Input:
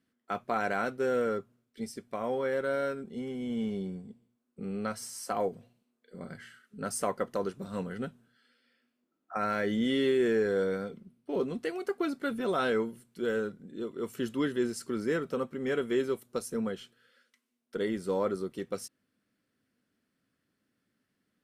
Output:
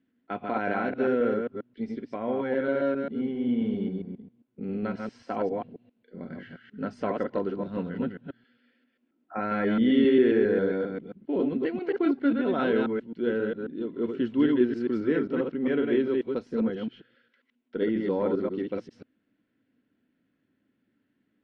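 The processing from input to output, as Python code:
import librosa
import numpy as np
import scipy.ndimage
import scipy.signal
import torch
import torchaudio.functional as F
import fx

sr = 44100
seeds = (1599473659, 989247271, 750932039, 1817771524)

y = fx.reverse_delay(x, sr, ms=134, wet_db=-3)
y = scipy.signal.sosfilt(scipy.signal.butter(4, 3400.0, 'lowpass', fs=sr, output='sos'), y)
y = fx.peak_eq(y, sr, hz=280.0, db=8.5, octaves=0.7)
y = fx.notch(y, sr, hz=1200.0, q=7.0)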